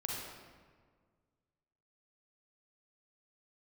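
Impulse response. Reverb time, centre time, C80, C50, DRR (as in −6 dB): 1.7 s, 94 ms, 1.5 dB, −1.5 dB, −3.0 dB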